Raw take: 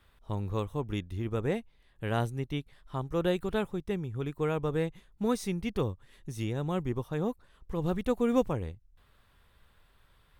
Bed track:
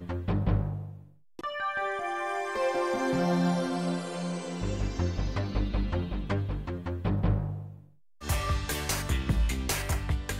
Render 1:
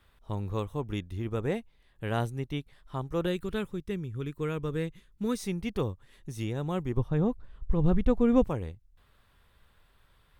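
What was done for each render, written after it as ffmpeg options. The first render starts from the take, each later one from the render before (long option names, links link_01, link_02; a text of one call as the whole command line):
ffmpeg -i in.wav -filter_complex "[0:a]asettb=1/sr,asplit=3[link_01][link_02][link_03];[link_01]atrim=end=3.264[link_04];[link_02]atrim=start=3.26:end=5.39,asetpts=PTS-STARTPTS,afade=type=in:duration=0.004:curve=qsin,afade=type=out:start_time=2.126:duration=0.004:curve=qsin,equalizer=frequency=750:width_type=o:width=0.76:gain=-12[link_05];[link_03]atrim=start=5.386[link_06];[link_04][link_05]acrossfade=duration=0.004:curve1=hsin:curve2=qsin[link_07];[link_07][link_06]acrossfade=duration=0.004:curve1=qsin:curve2=hsin,asettb=1/sr,asplit=3[link_08][link_09][link_10];[link_08]atrim=end=6.974[link_11];[link_09]atrim=start=6.97:end=8.44,asetpts=PTS-STARTPTS,afade=type=in:duration=0.004:curve=qsin,afade=type=out:start_time=1.466:duration=0.004:curve=qsin,aemphasis=mode=reproduction:type=bsi[link_12];[link_10]atrim=start=8.436[link_13];[link_11][link_12]acrossfade=duration=0.004:curve1=hsin:curve2=qsin[link_14];[link_14][link_13]acrossfade=duration=0.004:curve1=qsin:curve2=hsin" out.wav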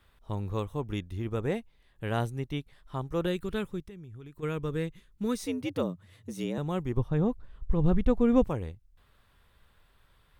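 ffmpeg -i in.wav -filter_complex "[0:a]asplit=3[link_01][link_02][link_03];[link_01]afade=type=out:start_time=3.85:duration=0.02[link_04];[link_02]acompressor=threshold=-42dB:ratio=8:attack=3.2:release=140:knee=1:detection=peak,afade=type=in:start_time=3.85:duration=0.02,afade=type=out:start_time=4.42:duration=0.02[link_05];[link_03]afade=type=in:start_time=4.42:duration=0.02[link_06];[link_04][link_05][link_06]amix=inputs=3:normalize=0,asettb=1/sr,asplit=3[link_07][link_08][link_09];[link_07]atrim=end=5.464[link_10];[link_08]atrim=start=5.46:end=6.58,asetpts=PTS-STARTPTS,afade=type=in:duration=0.004:curve=qsin,afade=type=out:start_time=1.116:duration=0.004:curve=qsin,afreqshift=82[link_11];[link_09]atrim=start=6.576[link_12];[link_10][link_11]acrossfade=duration=0.004:curve1=hsin:curve2=qsin[link_13];[link_13][link_12]acrossfade=duration=0.004:curve1=qsin:curve2=hsin" out.wav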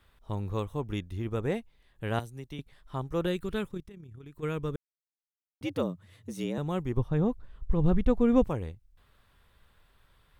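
ffmpeg -i in.wav -filter_complex "[0:a]asettb=1/sr,asplit=3[link_01][link_02][link_03];[link_01]atrim=end=2.194[link_04];[link_02]atrim=start=2.19:end=2.59,asetpts=PTS-STARTPTS,afade=type=in:duration=0.004:curve=qsin,afade=type=out:start_time=0.396:duration=0.004:curve=qsin,acrossover=split=250|3900[link_05][link_06][link_07];[link_05]acompressor=threshold=-43dB:ratio=4[link_08];[link_06]acompressor=threshold=-44dB:ratio=4[link_09];[link_07]acompressor=threshold=-53dB:ratio=4[link_10];[link_08][link_09][link_10]amix=inputs=3:normalize=0[link_11];[link_03]atrim=start=2.586[link_12];[link_04][link_11]acrossfade=duration=0.004:curve1=hsin:curve2=qsin[link_13];[link_13][link_12]acrossfade=duration=0.004:curve1=qsin:curve2=hsin,asettb=1/sr,asplit=3[link_14][link_15][link_16];[link_14]atrim=end=3.684[link_17];[link_15]atrim=start=3.68:end=4.26,asetpts=PTS-STARTPTS,afade=type=in:duration=0.004:curve=qsin,afade=type=out:start_time=0.576:duration=0.004:curve=qsin,tremolo=f=34:d=0.519[link_18];[link_16]atrim=start=4.256[link_19];[link_17][link_18]acrossfade=duration=0.004:curve1=hsin:curve2=qsin[link_20];[link_20][link_19]acrossfade=duration=0.004:curve1=qsin:curve2=hsin,asplit=3[link_21][link_22][link_23];[link_21]atrim=end=4.76,asetpts=PTS-STARTPTS,afade=type=out:start_time=4.756:duration=0.004:curve=hsin[link_24];[link_22]atrim=start=4.76:end=5.61,asetpts=PTS-STARTPTS,volume=0[link_25];[link_23]atrim=start=5.61,asetpts=PTS-STARTPTS,afade=type=in:duration=0.004:curve=hsin[link_26];[link_24][link_25][link_26]concat=n=3:v=0:a=1" out.wav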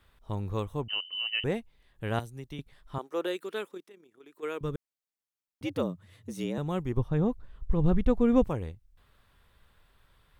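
ffmpeg -i in.wav -filter_complex "[0:a]asettb=1/sr,asplit=3[link_01][link_02][link_03];[link_01]atrim=end=0.884[link_04];[link_02]atrim=start=0.88:end=1.44,asetpts=PTS-STARTPTS,afade=type=in:duration=0.004:curve=qsin,afade=type=out:start_time=0.556:duration=0.004:curve=qsin,lowpass=frequency=2600:width_type=q:width=0.5098,lowpass=frequency=2600:width_type=q:width=0.6013,lowpass=frequency=2600:width_type=q:width=0.9,lowpass=frequency=2600:width_type=q:width=2.563,afreqshift=-3100[link_05];[link_03]atrim=start=1.436[link_06];[link_04][link_05]acrossfade=duration=0.004:curve1=hsin:curve2=qsin[link_07];[link_07][link_06]acrossfade=duration=0.004:curve1=qsin:curve2=hsin,asettb=1/sr,asplit=3[link_08][link_09][link_10];[link_08]atrim=end=2.984[link_11];[link_09]atrim=start=2.98:end=4.61,asetpts=PTS-STARTPTS,afade=type=in:duration=0.004:curve=qsin,afade=type=out:start_time=1.626:duration=0.004:curve=qsin,highpass=frequency=320:width=0.5412,highpass=frequency=320:width=1.3066[link_12];[link_10]atrim=start=4.606[link_13];[link_11][link_12]acrossfade=duration=0.004:curve1=hsin:curve2=qsin[link_14];[link_14][link_13]acrossfade=duration=0.004:curve1=qsin:curve2=hsin" out.wav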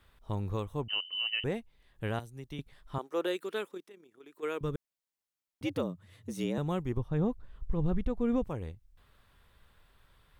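ffmpeg -i in.wav -af "alimiter=limit=-21.5dB:level=0:latency=1:release=444" out.wav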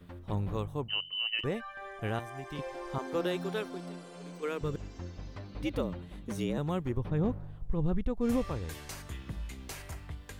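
ffmpeg -i in.wav -i bed.wav -filter_complex "[1:a]volume=-13dB[link_01];[0:a][link_01]amix=inputs=2:normalize=0" out.wav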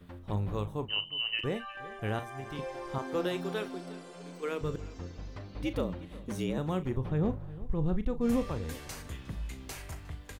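ffmpeg -i in.wav -filter_complex "[0:a]asplit=2[link_01][link_02];[link_02]adelay=38,volume=-12dB[link_03];[link_01][link_03]amix=inputs=2:normalize=0,asplit=2[link_04][link_05];[link_05]adelay=359,lowpass=frequency=4100:poles=1,volume=-18.5dB,asplit=2[link_06][link_07];[link_07]adelay=359,lowpass=frequency=4100:poles=1,volume=0.26[link_08];[link_04][link_06][link_08]amix=inputs=3:normalize=0" out.wav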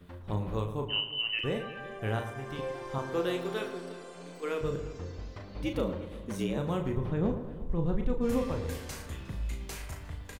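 ffmpeg -i in.wav -filter_complex "[0:a]asplit=2[link_01][link_02];[link_02]adelay=36,volume=-6.5dB[link_03];[link_01][link_03]amix=inputs=2:normalize=0,asplit=2[link_04][link_05];[link_05]adelay=112,lowpass=frequency=2000:poles=1,volume=-10dB,asplit=2[link_06][link_07];[link_07]adelay=112,lowpass=frequency=2000:poles=1,volume=0.54,asplit=2[link_08][link_09];[link_09]adelay=112,lowpass=frequency=2000:poles=1,volume=0.54,asplit=2[link_10][link_11];[link_11]adelay=112,lowpass=frequency=2000:poles=1,volume=0.54,asplit=2[link_12][link_13];[link_13]adelay=112,lowpass=frequency=2000:poles=1,volume=0.54,asplit=2[link_14][link_15];[link_15]adelay=112,lowpass=frequency=2000:poles=1,volume=0.54[link_16];[link_04][link_06][link_08][link_10][link_12][link_14][link_16]amix=inputs=7:normalize=0" out.wav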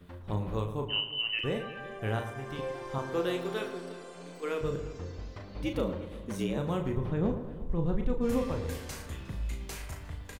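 ffmpeg -i in.wav -af anull out.wav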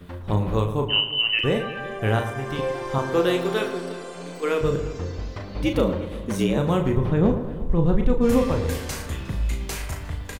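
ffmpeg -i in.wav -af "volume=10dB" out.wav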